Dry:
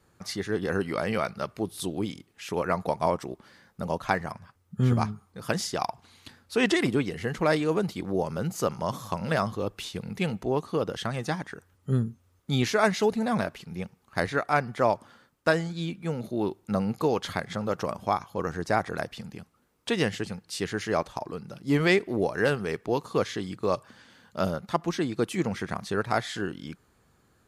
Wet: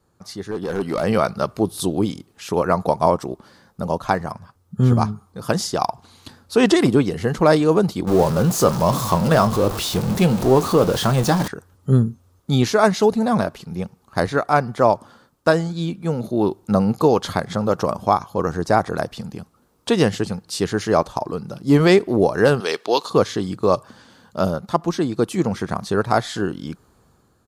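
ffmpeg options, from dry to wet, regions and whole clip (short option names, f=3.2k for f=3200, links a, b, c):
-filter_complex "[0:a]asettb=1/sr,asplit=3[a][b][c];[a]atrim=end=0.514[d];[b]atrim=start=0.51:end=1.04,asetpts=PTS-STARTPTS,afade=t=in:d=0.004:c=qsin,afade=t=out:st=0.526:d=0.004:c=qsin,lowshelf=f=62:g=-11.5,asoftclip=type=hard:threshold=-24.5dB[e];[c]atrim=start=1.036[f];[d][e]acrossfade=d=0.004:c1=hsin:c2=qsin[g];[g][f]acrossfade=d=0.004:c1=qsin:c2=hsin,asettb=1/sr,asplit=3[h][i][j];[h]atrim=end=8.074[k];[i]atrim=start=8.07:end=11.48,asetpts=PTS-STARTPTS,afade=t=in:d=0.004:c=qsin,afade=t=out:st=3.406:d=0.004:c=qsin,aeval=exprs='val(0)+0.5*0.0316*sgn(val(0))':c=same,asplit=2[l][m];[m]adelay=23,volume=-12dB[n];[l][n]amix=inputs=2:normalize=0,atrim=end_sample=150381[o];[j]atrim=start=11.476[p];[k][o]acrossfade=d=0.004:c1=hsin:c2=qsin[q];[q][p]acrossfade=d=0.004:c1=qsin:c2=hsin,asettb=1/sr,asplit=3[r][s][t];[r]atrim=end=22.604[u];[s]atrim=start=22.6:end=23.1,asetpts=PTS-STARTPTS,afade=t=in:d=0.004:c=qsin,afade=t=out:st=0.496:d=0.004:c=qsin,highpass=420,equalizer=f=3.7k:t=o:w=1.5:g=14.5[v];[t]atrim=start=23.096[w];[u][v]acrossfade=d=0.004:c1=hsin:c2=qsin[x];[x][w]acrossfade=d=0.004:c1=qsin:c2=hsin,firequalizer=gain_entry='entry(1100,0);entry(2000,-9);entry(4100,-2)':delay=0.05:min_phase=1,dynaudnorm=f=220:g=7:m=11.5dB"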